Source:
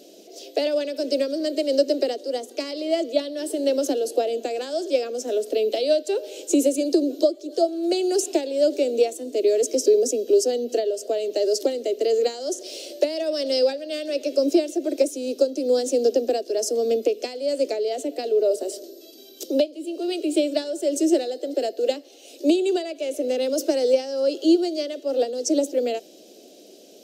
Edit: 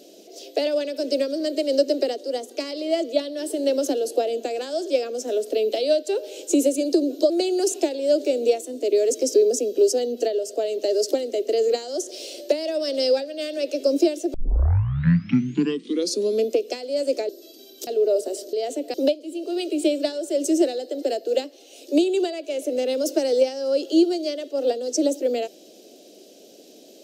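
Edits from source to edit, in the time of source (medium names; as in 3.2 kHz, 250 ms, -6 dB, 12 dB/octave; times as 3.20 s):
7.30–7.82 s: delete
14.86 s: tape start 2.14 s
17.81–18.22 s: swap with 18.88–19.46 s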